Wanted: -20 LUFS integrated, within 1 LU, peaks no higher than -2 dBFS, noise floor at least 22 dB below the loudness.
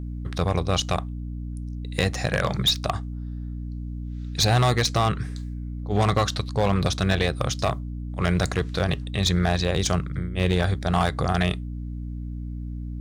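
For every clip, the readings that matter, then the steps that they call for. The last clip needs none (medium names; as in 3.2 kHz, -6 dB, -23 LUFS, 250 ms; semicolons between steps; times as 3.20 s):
clipped samples 0.8%; clipping level -14.5 dBFS; hum 60 Hz; highest harmonic 300 Hz; hum level -29 dBFS; loudness -25.5 LUFS; peak level -14.5 dBFS; loudness target -20.0 LUFS
-> clip repair -14.5 dBFS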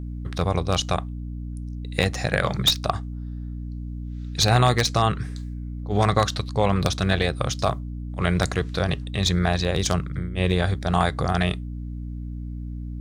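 clipped samples 0.0%; hum 60 Hz; highest harmonic 300 Hz; hum level -29 dBFS
-> de-hum 60 Hz, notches 5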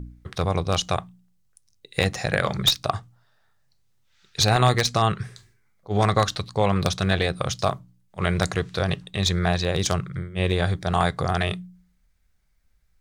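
hum not found; loudness -24.0 LUFS; peak level -5.0 dBFS; loudness target -20.0 LUFS
-> trim +4 dB; peak limiter -2 dBFS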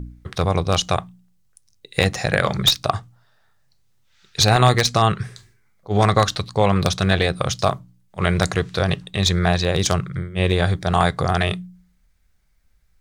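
loudness -20.0 LUFS; peak level -2.0 dBFS; noise floor -60 dBFS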